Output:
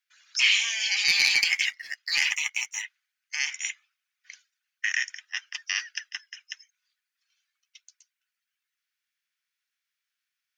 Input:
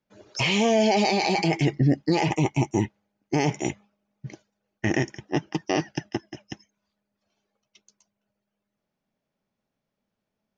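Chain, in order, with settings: steep high-pass 1500 Hz 36 dB/oct; 1.08–2.82 sample leveller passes 1; gain +5 dB

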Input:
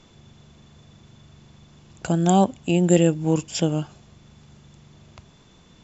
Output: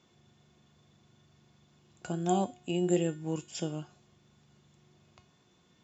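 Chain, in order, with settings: HPF 98 Hz; resonator 360 Hz, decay 0.39 s, harmonics all, mix 80%

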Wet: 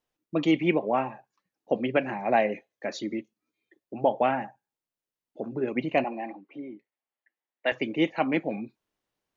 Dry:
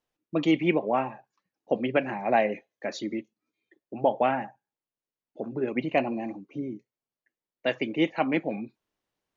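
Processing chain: 6.04–7.72 speaker cabinet 340–3700 Hz, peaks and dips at 430 Hz -5 dB, 810 Hz +5 dB, 1900 Hz +6 dB

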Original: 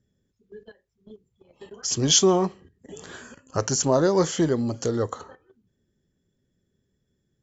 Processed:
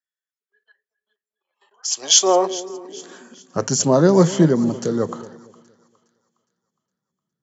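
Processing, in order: split-band echo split 830 Hz, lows 0.233 s, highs 0.412 s, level -14.5 dB; high-pass sweep 1500 Hz -> 170 Hz, 1.23–3.65; three-band expander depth 40%; gain +2 dB

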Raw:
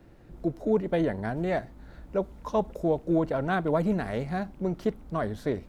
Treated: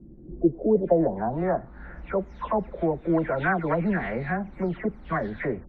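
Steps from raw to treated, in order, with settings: spectral delay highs early, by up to 0.255 s; in parallel at -0.5 dB: compressor, threshold -40 dBFS, peak gain reduction 18 dB; on the sum: low-pass sweep 240 Hz -> 2000 Hz, 0.02–2

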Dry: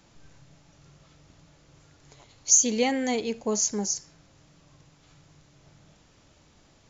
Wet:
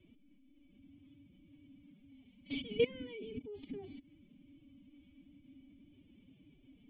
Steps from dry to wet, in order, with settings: level quantiser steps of 23 dB; formant-preserving pitch shift +11.5 st; vocal tract filter i; gain +17 dB

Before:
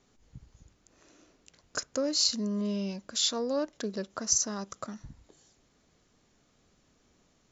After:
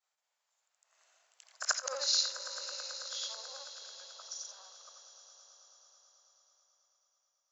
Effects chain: short-time reversal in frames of 0.174 s; Doppler pass-by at 1.73, 17 m/s, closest 3.7 m; steep high-pass 660 Hz 36 dB/oct; swelling echo 0.109 s, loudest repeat 5, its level -16.5 dB; gain +7.5 dB

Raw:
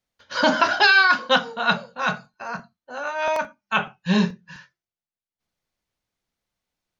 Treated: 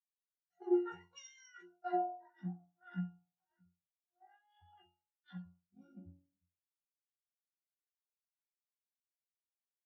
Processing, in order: per-bin expansion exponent 2; gate -46 dBFS, range -9 dB; de-hum 105.2 Hz, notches 9; granular stretch 1.9×, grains 62 ms; reverse; compressor 8:1, threshold -35 dBFS, peak gain reduction 20 dB; reverse; Gaussian blur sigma 1.7 samples; octave resonator C, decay 0.5 s; speed mistake 33 rpm record played at 45 rpm; three-band expander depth 100%; gain +9.5 dB

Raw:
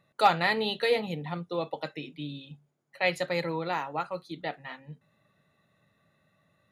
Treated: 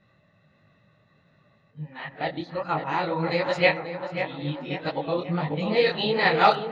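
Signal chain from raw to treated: whole clip reversed; LPF 5500 Hz 24 dB/oct; low shelf 150 Hz +4.5 dB; notch 3600 Hz, Q 28; in parallel at +2 dB: level quantiser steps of 12 dB; on the sum: tape echo 0.538 s, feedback 58%, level -7 dB, low-pass 2200 Hz; on a send at -15 dB: reverb RT60 1.7 s, pre-delay 4 ms; on the sum: detuned doubles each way 50 cents; gain +4 dB

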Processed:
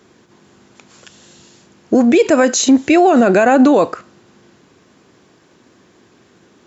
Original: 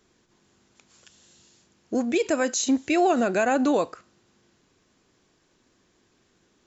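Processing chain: HPF 100 Hz 12 dB/oct; high shelf 2900 Hz -8 dB; maximiser +18.5 dB; gain -2 dB

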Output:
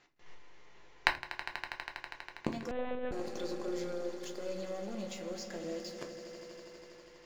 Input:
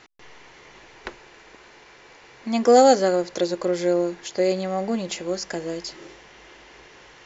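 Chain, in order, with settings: gate -42 dBFS, range -18 dB; sample leveller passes 3; limiter -11 dBFS, peak gain reduction 7.5 dB; flipped gate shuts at -23 dBFS, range -32 dB; swelling echo 81 ms, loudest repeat 5, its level -14.5 dB; shoebox room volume 120 m³, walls furnished, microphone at 0.85 m; 2.71–3.12 monotone LPC vocoder at 8 kHz 250 Hz; gain +7 dB

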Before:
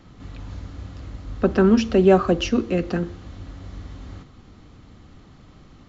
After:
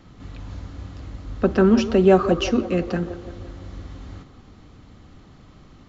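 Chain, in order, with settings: band-limited delay 0.171 s, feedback 56%, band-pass 690 Hz, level -10 dB

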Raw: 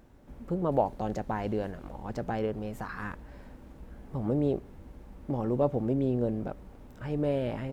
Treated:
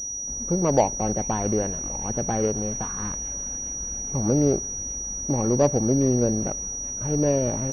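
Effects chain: median filter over 25 samples; thin delay 0.412 s, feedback 81%, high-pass 2300 Hz, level -11 dB; pulse-width modulation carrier 5800 Hz; gain +7 dB

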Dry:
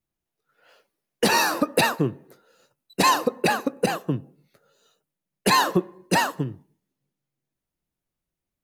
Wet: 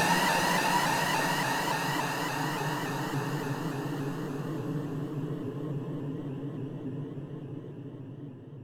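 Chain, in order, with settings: power-law curve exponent 1.4; Paulstretch 24×, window 0.50 s, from 6.24; shaped vibrato saw up 3.5 Hz, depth 100 cents

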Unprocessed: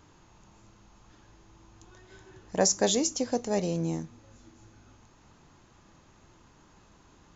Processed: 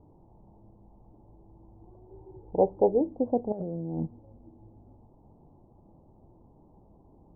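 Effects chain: 2.06–3.01 comb 2.3 ms, depth 53%; steep low-pass 860 Hz 48 dB/oct; 3.52–4.07 negative-ratio compressor -36 dBFS, ratio -1; gain +2.5 dB

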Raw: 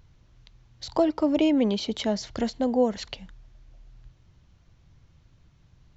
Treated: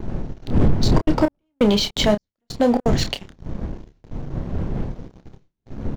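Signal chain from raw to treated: wind noise 110 Hz -26 dBFS; gate with hold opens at -36 dBFS; bell 66 Hz -10 dB 2.6 oct; notch 1200 Hz, Q 18; sample leveller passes 3; 0.86–2.97 step gate "x.xx....xx" 168 bpm -60 dB; doubler 29 ms -8.5 dB

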